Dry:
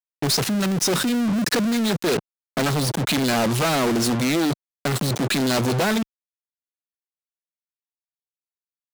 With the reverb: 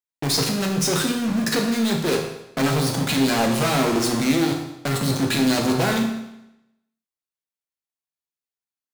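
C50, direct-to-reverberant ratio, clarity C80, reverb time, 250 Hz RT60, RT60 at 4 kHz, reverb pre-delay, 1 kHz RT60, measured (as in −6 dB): 5.5 dB, 1.0 dB, 8.0 dB, 0.85 s, 0.85 s, 0.85 s, 8 ms, 0.85 s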